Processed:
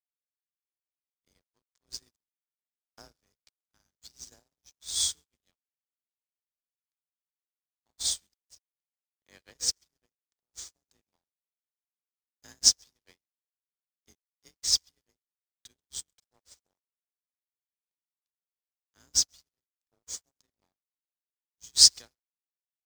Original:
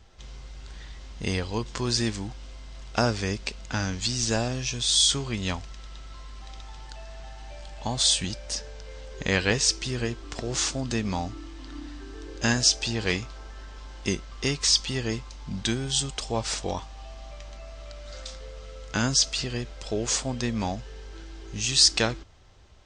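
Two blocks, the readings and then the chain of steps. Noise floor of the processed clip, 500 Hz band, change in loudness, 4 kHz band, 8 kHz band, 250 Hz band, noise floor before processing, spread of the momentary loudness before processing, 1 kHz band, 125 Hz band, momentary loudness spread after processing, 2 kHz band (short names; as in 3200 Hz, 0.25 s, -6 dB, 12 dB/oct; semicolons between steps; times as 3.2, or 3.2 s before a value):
under -85 dBFS, -31.0 dB, +1.5 dB, -4.0 dB, -2.5 dB, -32.5 dB, -42 dBFS, 22 LU, under -25 dB, under -30 dB, 23 LU, -25.5 dB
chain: octaver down 2 oct, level 0 dB; dynamic EQ 100 Hz, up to -4 dB, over -36 dBFS, Q 0.78; in parallel at -11.5 dB: bit-crush 6-bit; on the sum: tone controls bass -2 dB, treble +11 dB; Schroeder reverb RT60 0.96 s, combs from 32 ms, DRR 16 dB; frequency shift +25 Hz; Butterworth band-stop 2700 Hz, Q 7.7; on a send: feedback echo 0.134 s, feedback 34%, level -14.5 dB; on the sum: crossover distortion -24 dBFS; upward expander 2.5:1, over -39 dBFS; gain -5.5 dB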